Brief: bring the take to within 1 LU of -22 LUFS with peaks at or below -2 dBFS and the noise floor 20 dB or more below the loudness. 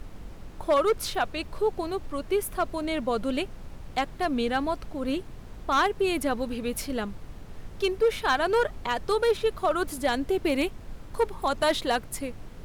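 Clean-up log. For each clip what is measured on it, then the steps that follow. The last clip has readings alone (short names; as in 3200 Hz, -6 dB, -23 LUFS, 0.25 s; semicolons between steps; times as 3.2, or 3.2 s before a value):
clipped 0.7%; flat tops at -16.5 dBFS; noise floor -43 dBFS; noise floor target -48 dBFS; loudness -27.5 LUFS; peak -16.5 dBFS; loudness target -22.0 LUFS
-> clip repair -16.5 dBFS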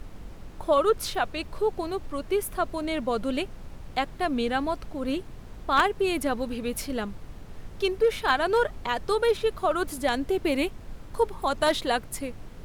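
clipped 0.0%; noise floor -43 dBFS; noise floor target -48 dBFS
-> noise print and reduce 6 dB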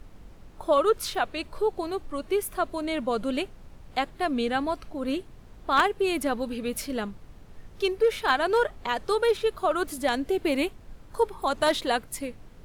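noise floor -49 dBFS; loudness -27.5 LUFS; peak -8.0 dBFS; loudness target -22.0 LUFS
-> gain +5.5 dB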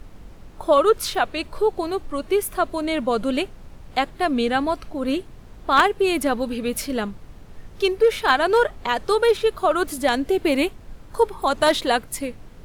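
loudness -22.0 LUFS; peak -2.5 dBFS; noise floor -43 dBFS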